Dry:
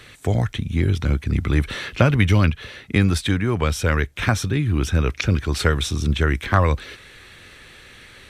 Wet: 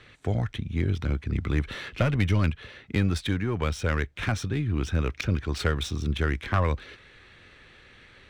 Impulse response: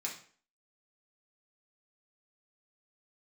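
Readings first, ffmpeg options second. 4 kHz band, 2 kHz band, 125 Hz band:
-7.5 dB, -7.5 dB, -7.0 dB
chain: -af "adynamicsmooth=sensitivity=4:basefreq=4500,aeval=exprs='(tanh(2.24*val(0)+0.35)-tanh(0.35))/2.24':c=same,volume=0.531"

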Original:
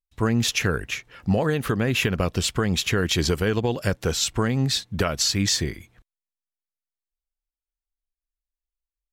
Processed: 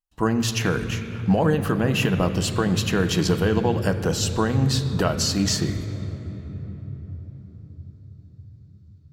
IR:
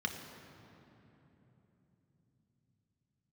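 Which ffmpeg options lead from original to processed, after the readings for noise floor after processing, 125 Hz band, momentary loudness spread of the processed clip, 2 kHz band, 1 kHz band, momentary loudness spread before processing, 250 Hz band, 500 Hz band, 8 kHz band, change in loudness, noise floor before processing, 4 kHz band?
-49 dBFS, +3.0 dB, 15 LU, -1.5 dB, +3.0 dB, 4 LU, +3.0 dB, +2.0 dB, -2.0 dB, +1.0 dB, under -85 dBFS, -2.5 dB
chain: -filter_complex "[0:a]asplit=2[s0][s1];[1:a]atrim=start_sample=2205,asetrate=29988,aresample=44100[s2];[s1][s2]afir=irnorm=-1:irlink=0,volume=0.335[s3];[s0][s3]amix=inputs=2:normalize=0"

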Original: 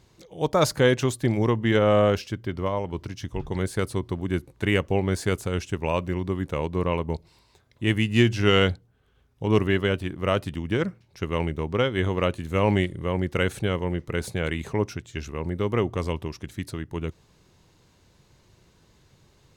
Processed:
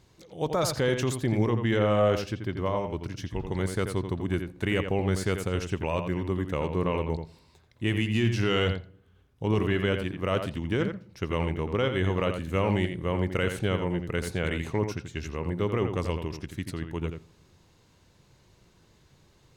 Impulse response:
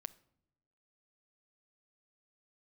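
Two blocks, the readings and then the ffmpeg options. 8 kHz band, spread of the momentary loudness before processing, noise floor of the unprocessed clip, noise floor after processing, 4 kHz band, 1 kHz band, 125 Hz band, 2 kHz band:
-2.0 dB, 13 LU, -61 dBFS, -61 dBFS, -4.5 dB, -3.0 dB, -2.5 dB, -3.5 dB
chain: -filter_complex "[0:a]alimiter=limit=0.188:level=0:latency=1:release=14,asplit=2[s0][s1];[1:a]atrim=start_sample=2205,lowpass=4200,adelay=85[s2];[s1][s2]afir=irnorm=-1:irlink=0,volume=0.708[s3];[s0][s3]amix=inputs=2:normalize=0,volume=0.794"

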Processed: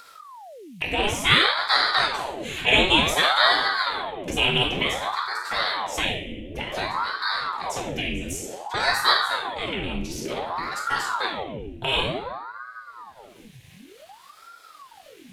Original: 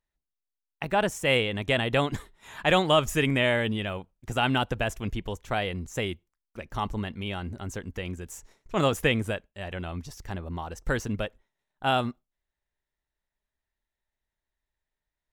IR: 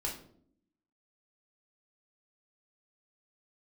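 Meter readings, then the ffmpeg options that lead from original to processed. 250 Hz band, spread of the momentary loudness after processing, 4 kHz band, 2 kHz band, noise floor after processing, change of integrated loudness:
-1.5 dB, 14 LU, +10.5 dB, +7.5 dB, -50 dBFS, +5.0 dB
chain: -filter_complex "[0:a]highshelf=f=1900:t=q:w=3:g=7[s0];[1:a]atrim=start_sample=2205,asetrate=27342,aresample=44100[s1];[s0][s1]afir=irnorm=-1:irlink=0,acompressor=mode=upward:threshold=0.158:ratio=2.5,aeval=exprs='val(0)*sin(2*PI*750*n/s+750*0.85/0.55*sin(2*PI*0.55*n/s))':c=same,volume=0.668"

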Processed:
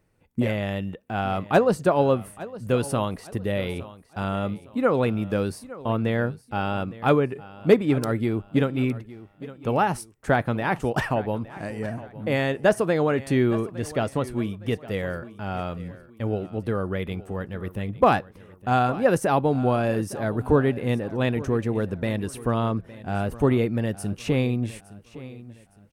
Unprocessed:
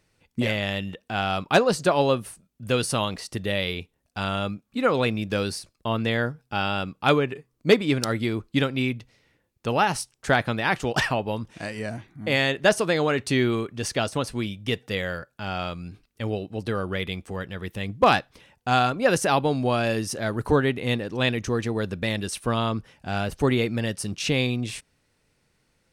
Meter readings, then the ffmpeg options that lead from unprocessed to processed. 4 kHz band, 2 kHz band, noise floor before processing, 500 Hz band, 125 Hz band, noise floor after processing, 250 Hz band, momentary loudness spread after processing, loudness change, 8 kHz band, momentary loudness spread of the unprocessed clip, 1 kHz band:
-10.0 dB, -4.5 dB, -72 dBFS, +1.0 dB, +2.0 dB, -53 dBFS, +2.0 dB, 12 LU, 0.0 dB, -7.0 dB, 12 LU, -0.5 dB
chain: -filter_complex "[0:a]equalizer=f=4600:w=0.5:g=-14,asplit=2[s0][s1];[s1]aecho=0:1:862|1724|2586:0.133|0.0467|0.0163[s2];[s0][s2]amix=inputs=2:normalize=0,volume=1.26"

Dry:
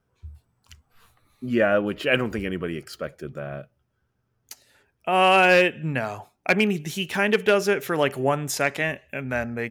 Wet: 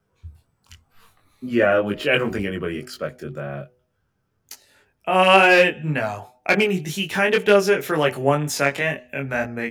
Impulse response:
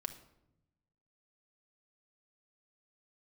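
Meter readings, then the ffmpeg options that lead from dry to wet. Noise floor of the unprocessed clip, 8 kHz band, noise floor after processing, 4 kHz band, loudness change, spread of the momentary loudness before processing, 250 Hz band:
-73 dBFS, +2.0 dB, -71 dBFS, +3.5 dB, +3.0 dB, 17 LU, +2.0 dB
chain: -filter_complex "[0:a]bandreject=f=124.4:t=h:w=4,bandreject=f=248.8:t=h:w=4,bandreject=f=373.2:t=h:w=4,bandreject=f=497.6:t=h:w=4,bandreject=f=622:t=h:w=4,bandreject=f=746.4:t=h:w=4,bandreject=f=870.8:t=h:w=4,acrossover=split=150|7100[s0][s1][s2];[s2]asoftclip=type=hard:threshold=0.0224[s3];[s0][s1][s3]amix=inputs=3:normalize=0,flanger=delay=19.5:depth=2.3:speed=2,volume=2"

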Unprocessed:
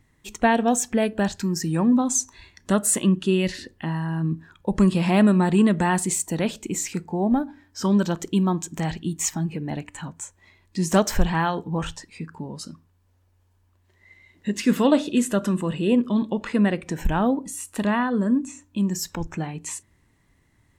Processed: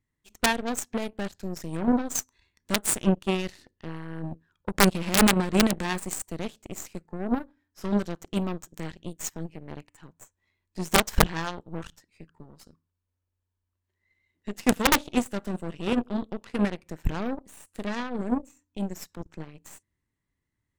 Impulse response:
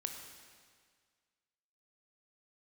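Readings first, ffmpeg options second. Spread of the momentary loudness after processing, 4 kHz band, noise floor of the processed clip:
18 LU, +2.0 dB, -83 dBFS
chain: -af "equalizer=f=740:w=2.9:g=-4.5,aeval=exprs='(mod(2.82*val(0)+1,2)-1)/2.82':c=same,aeval=exprs='0.355*(cos(1*acos(clip(val(0)/0.355,-1,1)))-cos(1*PI/2))+0.112*(cos(2*acos(clip(val(0)/0.355,-1,1)))-cos(2*PI/2))+0.0794*(cos(3*acos(clip(val(0)/0.355,-1,1)))-cos(3*PI/2))+0.0112*(cos(7*acos(clip(val(0)/0.355,-1,1)))-cos(7*PI/2))+0.0224*(cos(8*acos(clip(val(0)/0.355,-1,1)))-cos(8*PI/2))':c=same"

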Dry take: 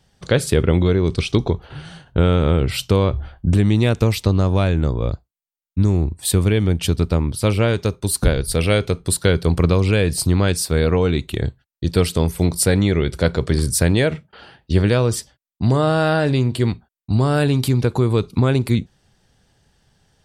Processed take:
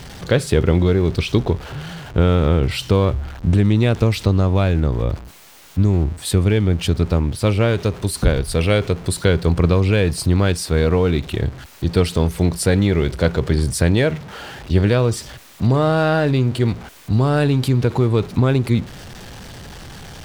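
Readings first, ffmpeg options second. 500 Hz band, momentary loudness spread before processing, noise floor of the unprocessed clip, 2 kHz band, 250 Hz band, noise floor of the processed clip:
+0.5 dB, 6 LU, under -85 dBFS, 0.0 dB, +0.5 dB, -42 dBFS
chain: -af "aeval=exprs='val(0)+0.5*0.0335*sgn(val(0))':c=same,highshelf=f=7100:g=-10.5"

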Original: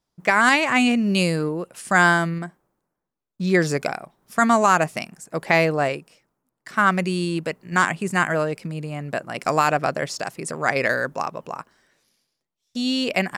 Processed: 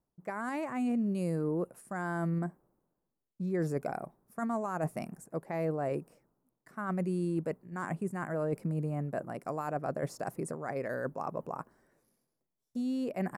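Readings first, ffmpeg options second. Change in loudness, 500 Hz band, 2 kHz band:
-14.0 dB, -11.0 dB, -23.0 dB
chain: -af "areverse,acompressor=threshold=0.0355:ratio=5,areverse,firequalizer=gain_entry='entry(370,0);entry(3100,-22);entry(11000,-4)':delay=0.05:min_phase=1"

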